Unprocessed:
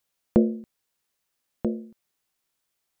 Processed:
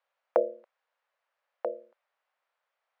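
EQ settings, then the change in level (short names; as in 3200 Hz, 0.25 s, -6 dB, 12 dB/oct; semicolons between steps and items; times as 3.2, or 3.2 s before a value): Chebyshev high-pass 540 Hz, order 4; LPF 1700 Hz 12 dB/oct; +7.0 dB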